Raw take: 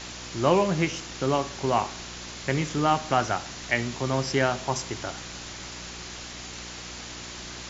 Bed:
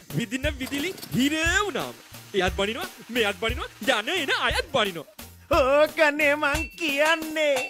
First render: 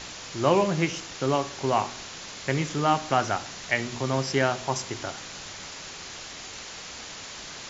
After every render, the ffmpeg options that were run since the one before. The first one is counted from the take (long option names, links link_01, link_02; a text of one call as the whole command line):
ffmpeg -i in.wav -af "bandreject=frequency=60:width_type=h:width=4,bandreject=frequency=120:width_type=h:width=4,bandreject=frequency=180:width_type=h:width=4,bandreject=frequency=240:width_type=h:width=4,bandreject=frequency=300:width_type=h:width=4,bandreject=frequency=360:width_type=h:width=4" out.wav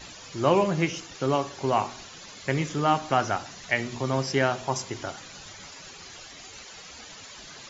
ffmpeg -i in.wav -af "afftdn=noise_reduction=12:noise_floor=-41" out.wav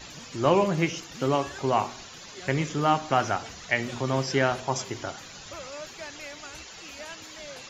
ffmpeg -i in.wav -i bed.wav -filter_complex "[1:a]volume=-21.5dB[link_01];[0:a][link_01]amix=inputs=2:normalize=0" out.wav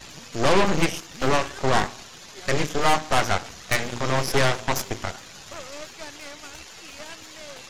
ffmpeg -i in.wav -af "asoftclip=type=tanh:threshold=-9.5dB,aeval=exprs='0.282*(cos(1*acos(clip(val(0)/0.282,-1,1)))-cos(1*PI/2))+0.1*(cos(8*acos(clip(val(0)/0.282,-1,1)))-cos(8*PI/2))':channel_layout=same" out.wav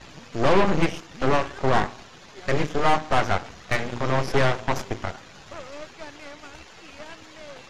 ffmpeg -i in.wav -af "aemphasis=mode=reproduction:type=75fm" out.wav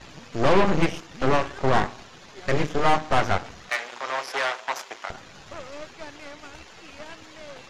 ffmpeg -i in.wav -filter_complex "[0:a]asettb=1/sr,asplit=3[link_01][link_02][link_03];[link_01]atrim=end=3.694[link_04];[link_02]atrim=start=3.69:end=5.1,asetpts=PTS-STARTPTS,afade=type=in:duration=0.004:curve=qsin,afade=type=out:start_time=1.406:duration=0.004:curve=qsin,highpass=810[link_05];[link_03]atrim=start=5.096[link_06];[link_04][link_05]acrossfade=duration=0.004:curve1=hsin:curve2=qsin[link_07];[link_07][link_06]acrossfade=duration=0.004:curve1=qsin:curve2=hsin" out.wav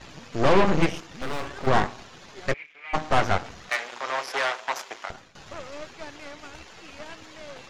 ffmpeg -i in.wav -filter_complex "[0:a]asettb=1/sr,asplit=3[link_01][link_02][link_03];[link_01]atrim=end=1.064[link_04];[link_02]atrim=start=1.06:end=1.67,asetpts=PTS-STARTPTS,afade=type=in:duration=0.004:curve=qsin,afade=type=out:start_time=0.606:duration=0.004:curve=qsin,volume=25.5dB,asoftclip=hard,volume=-25.5dB[link_05];[link_03]atrim=start=1.666[link_06];[link_04][link_05]acrossfade=duration=0.004:curve1=hsin:curve2=qsin[link_07];[link_07][link_06]acrossfade=duration=0.004:curve1=qsin:curve2=hsin,asplit=3[link_08][link_09][link_10];[link_08]afade=type=out:start_time=2.52:duration=0.02[link_11];[link_09]bandpass=frequency=2300:width_type=q:width=11,afade=type=in:start_time=2.52:duration=0.02,afade=type=out:start_time=2.93:duration=0.02[link_12];[link_10]afade=type=in:start_time=2.93:duration=0.02[link_13];[link_11][link_12][link_13]amix=inputs=3:normalize=0,asplit=2[link_14][link_15];[link_14]atrim=end=5.35,asetpts=PTS-STARTPTS,afade=type=out:start_time=4.9:duration=0.45:curve=qsin:silence=0.177828[link_16];[link_15]atrim=start=5.35,asetpts=PTS-STARTPTS,afade=type=in:duration=0.004:curve=hsin:silence=0.177828[link_17];[link_16][link_17]concat=n=2:v=0:a=1" out.wav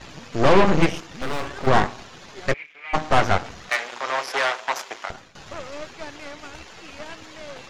ffmpeg -i in.wav -af "volume=3.5dB" out.wav